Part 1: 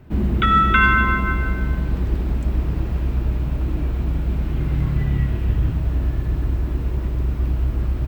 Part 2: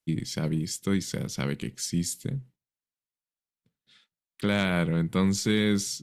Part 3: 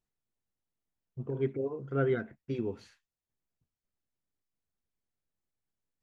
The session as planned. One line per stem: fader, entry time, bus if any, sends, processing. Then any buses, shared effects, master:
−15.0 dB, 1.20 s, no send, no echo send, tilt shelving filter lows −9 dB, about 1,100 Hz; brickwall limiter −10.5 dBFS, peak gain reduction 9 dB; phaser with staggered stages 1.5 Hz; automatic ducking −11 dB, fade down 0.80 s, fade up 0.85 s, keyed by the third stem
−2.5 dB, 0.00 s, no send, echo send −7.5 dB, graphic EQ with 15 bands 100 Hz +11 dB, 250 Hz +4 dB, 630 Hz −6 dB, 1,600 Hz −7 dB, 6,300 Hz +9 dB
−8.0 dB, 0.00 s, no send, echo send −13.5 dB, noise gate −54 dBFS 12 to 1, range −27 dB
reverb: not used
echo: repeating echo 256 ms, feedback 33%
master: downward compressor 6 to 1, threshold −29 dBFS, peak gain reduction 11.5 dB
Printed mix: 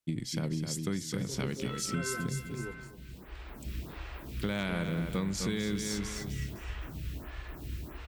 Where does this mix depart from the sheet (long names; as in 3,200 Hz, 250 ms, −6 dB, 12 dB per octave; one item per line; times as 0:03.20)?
stem 1 −15.0 dB → −6.5 dB
stem 2: missing graphic EQ with 15 bands 100 Hz +11 dB, 250 Hz +4 dB, 630 Hz −6 dB, 1,600 Hz −7 dB, 6,300 Hz +9 dB